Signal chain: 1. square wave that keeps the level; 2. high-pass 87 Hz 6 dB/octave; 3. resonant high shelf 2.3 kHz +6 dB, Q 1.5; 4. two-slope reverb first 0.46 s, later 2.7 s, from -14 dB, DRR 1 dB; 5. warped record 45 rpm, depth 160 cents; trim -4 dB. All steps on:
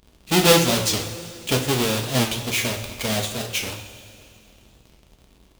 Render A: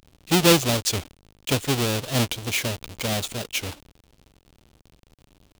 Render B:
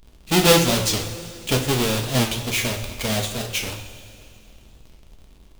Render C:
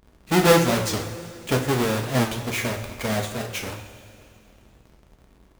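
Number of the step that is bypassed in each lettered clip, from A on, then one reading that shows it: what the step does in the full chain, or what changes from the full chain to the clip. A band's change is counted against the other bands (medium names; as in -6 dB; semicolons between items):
4, momentary loudness spread change -4 LU; 2, 125 Hz band +1.5 dB; 3, 4 kHz band -7.5 dB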